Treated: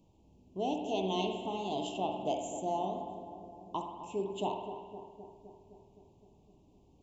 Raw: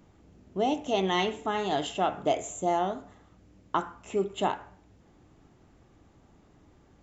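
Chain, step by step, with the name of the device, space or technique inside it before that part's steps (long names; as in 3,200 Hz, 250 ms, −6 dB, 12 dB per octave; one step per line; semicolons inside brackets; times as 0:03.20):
Chebyshev band-stop filter 990–2,600 Hz, order 3
dub delay into a spring reverb (feedback echo with a low-pass in the loop 258 ms, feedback 73%, low-pass 1,100 Hz, level −10 dB; spring reverb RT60 1.3 s, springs 53 ms, chirp 45 ms, DRR 5 dB)
level −7 dB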